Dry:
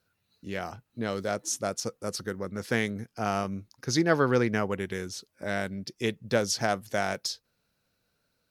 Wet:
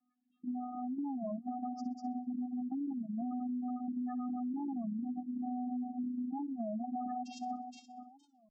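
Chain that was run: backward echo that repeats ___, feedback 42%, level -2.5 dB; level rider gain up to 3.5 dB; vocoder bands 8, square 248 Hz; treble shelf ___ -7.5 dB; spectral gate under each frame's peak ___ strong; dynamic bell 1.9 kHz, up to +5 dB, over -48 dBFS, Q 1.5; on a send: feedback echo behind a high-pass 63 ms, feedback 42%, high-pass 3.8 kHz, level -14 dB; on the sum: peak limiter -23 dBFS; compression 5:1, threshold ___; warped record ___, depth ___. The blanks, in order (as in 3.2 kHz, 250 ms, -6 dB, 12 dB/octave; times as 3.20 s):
236 ms, 2.6 kHz, -15 dB, -36 dBFS, 33 1/3 rpm, 250 cents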